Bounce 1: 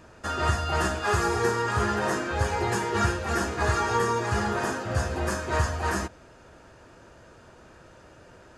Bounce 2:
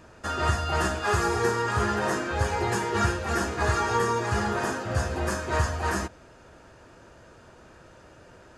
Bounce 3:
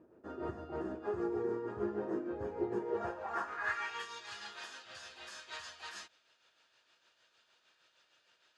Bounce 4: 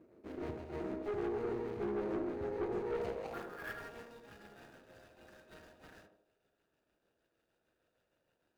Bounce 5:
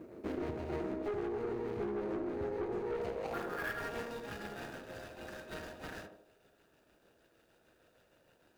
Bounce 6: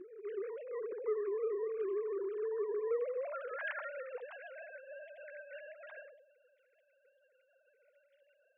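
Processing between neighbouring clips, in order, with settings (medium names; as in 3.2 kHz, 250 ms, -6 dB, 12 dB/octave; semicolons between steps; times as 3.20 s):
no audible change
band-pass sweep 340 Hz -> 3.6 kHz, 2.73–4.12 s; tremolo 6.5 Hz, depth 49%; trim -1.5 dB
median filter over 41 samples; band-passed feedback delay 78 ms, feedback 57%, band-pass 450 Hz, level -3.5 dB; valve stage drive 34 dB, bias 0.45; trim +2.5 dB
compression 8:1, threshold -47 dBFS, peak gain reduction 13.5 dB; trim +12 dB
formants replaced by sine waves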